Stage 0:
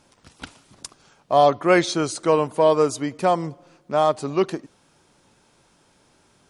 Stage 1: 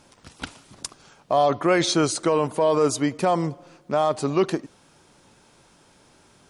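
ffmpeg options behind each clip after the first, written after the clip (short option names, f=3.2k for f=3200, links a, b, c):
-af "alimiter=limit=-14.5dB:level=0:latency=1:release=17,volume=3.5dB"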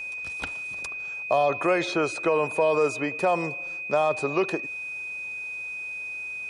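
-filter_complex "[0:a]acrossover=split=260|2900[a][b][c];[a]acompressor=threshold=-33dB:ratio=4[d];[b]acompressor=threshold=-20dB:ratio=4[e];[c]acompressor=threshold=-48dB:ratio=4[f];[d][e][f]amix=inputs=3:normalize=0,aeval=exprs='val(0)+0.0251*sin(2*PI*2500*n/s)':c=same,equalizer=f=125:t=o:w=1:g=-3,equalizer=f=250:t=o:w=1:g=-7,equalizer=f=500:t=o:w=1:g=3,equalizer=f=8k:t=o:w=1:g=3"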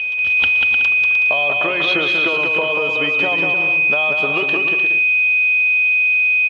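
-af "acompressor=threshold=-26dB:ratio=6,lowpass=f=3.1k:t=q:w=11,aecho=1:1:190|304|372.4|413.4|438.1:0.631|0.398|0.251|0.158|0.1,volume=4.5dB"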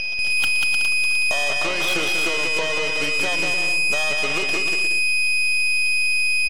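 -filter_complex "[0:a]acrossover=split=170|460|940[a][b][c][d];[c]aeval=exprs='val(0)*gte(abs(val(0)),0.00158)':c=same[e];[a][b][e][d]amix=inputs=4:normalize=0,aeval=exprs='0.596*(cos(1*acos(clip(val(0)/0.596,-1,1)))-cos(1*PI/2))+0.0944*(cos(8*acos(clip(val(0)/0.596,-1,1)))-cos(8*PI/2))':c=same,asoftclip=type=tanh:threshold=-4dB,volume=-5dB"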